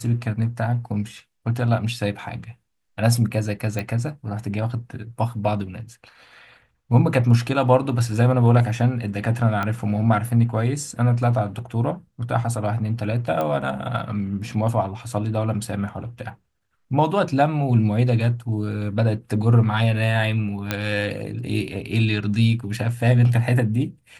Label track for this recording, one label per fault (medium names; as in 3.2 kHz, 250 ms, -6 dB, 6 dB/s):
3.790000	3.790000	pop -13 dBFS
9.630000	9.630000	pop -12 dBFS
13.410000	13.410000	pop -13 dBFS
20.710000	20.710000	pop -7 dBFS